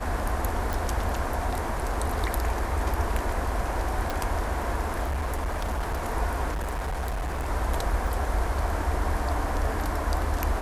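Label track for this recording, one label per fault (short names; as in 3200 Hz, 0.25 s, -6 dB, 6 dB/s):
0.730000	0.730000	pop
4.100000	4.100000	pop
5.030000	6.030000	clipped -24.5 dBFS
6.510000	7.490000	clipped -26.5 dBFS
8.070000	8.070000	gap 2.8 ms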